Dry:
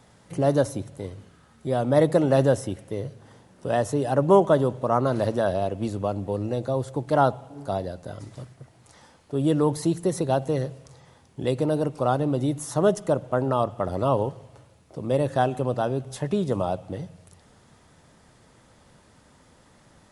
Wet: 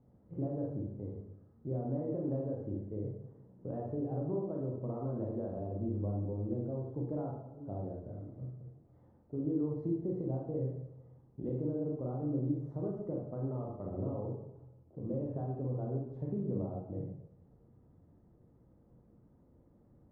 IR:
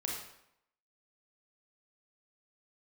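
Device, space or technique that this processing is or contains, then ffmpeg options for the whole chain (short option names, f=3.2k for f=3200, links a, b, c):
television next door: -filter_complex "[0:a]acompressor=threshold=-24dB:ratio=6,lowpass=410[a];[1:a]atrim=start_sample=2205[b];[a][b]afir=irnorm=-1:irlink=0,volume=-7dB"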